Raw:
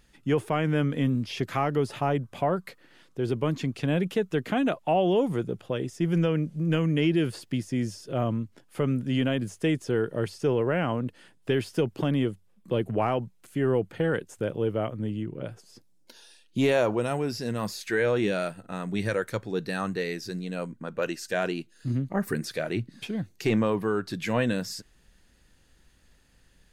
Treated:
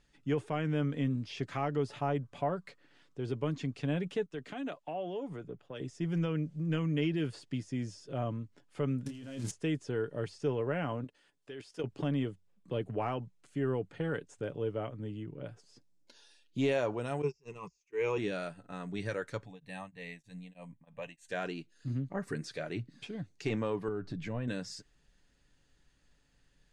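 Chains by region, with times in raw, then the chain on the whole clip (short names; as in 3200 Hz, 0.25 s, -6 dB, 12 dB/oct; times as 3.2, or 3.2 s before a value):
4.26–5.81 bell 62 Hz -12.5 dB 1.9 oct + compressor, threshold -26 dBFS + three-band expander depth 100%
9.06–9.51 switching spikes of -26.5 dBFS + negative-ratio compressor -31 dBFS, ratio -0.5 + doubler 26 ms -7 dB
11.04–11.84 tone controls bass -10 dB, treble +3 dB + level quantiser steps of 12 dB
17.22–18.18 gate -29 dBFS, range -33 dB + ripple EQ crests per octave 0.76, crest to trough 17 dB + auto swell 0.13 s
19.45–21.29 high shelf 9900 Hz +9 dB + fixed phaser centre 1400 Hz, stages 6 + beating tremolo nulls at 3.2 Hz
23.88–24.48 tilt -3 dB/oct + compressor 2.5:1, threshold -27 dBFS
whole clip: LPF 8500 Hz 24 dB/oct; comb 7 ms, depth 33%; gain -8.5 dB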